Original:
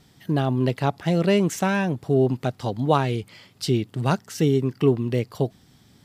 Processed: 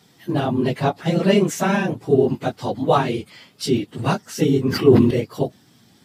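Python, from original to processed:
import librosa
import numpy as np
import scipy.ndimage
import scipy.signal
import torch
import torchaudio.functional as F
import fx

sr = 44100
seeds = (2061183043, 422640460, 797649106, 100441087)

y = fx.phase_scramble(x, sr, seeds[0], window_ms=50)
y = scipy.signal.sosfilt(scipy.signal.butter(2, 150.0, 'highpass', fs=sr, output='sos'), y)
y = fx.sustainer(y, sr, db_per_s=40.0, at=(4.63, 5.11))
y = F.gain(torch.from_numpy(y), 3.0).numpy()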